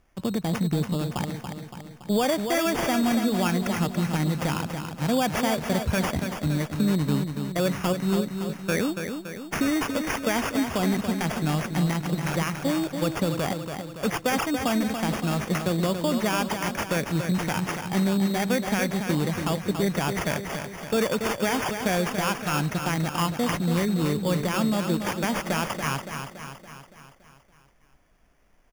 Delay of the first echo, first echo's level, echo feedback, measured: 0.283 s, -7.0 dB, 56%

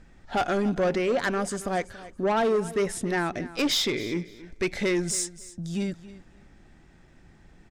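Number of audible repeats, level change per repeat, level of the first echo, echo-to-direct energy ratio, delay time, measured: 2, -14.0 dB, -17.0 dB, -17.0 dB, 0.279 s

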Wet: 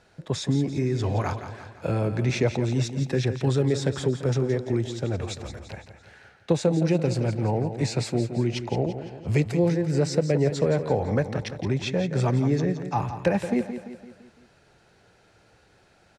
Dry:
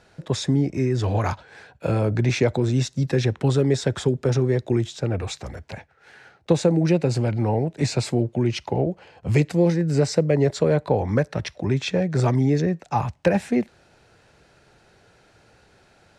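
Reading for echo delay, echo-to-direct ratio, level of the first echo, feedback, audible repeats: 0.17 s, -9.0 dB, -10.0 dB, 50%, 5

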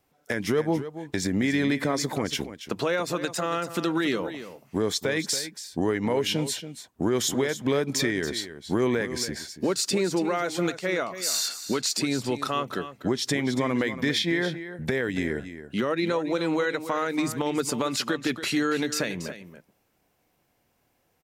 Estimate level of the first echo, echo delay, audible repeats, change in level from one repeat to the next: -12.0 dB, 0.281 s, 1, no steady repeat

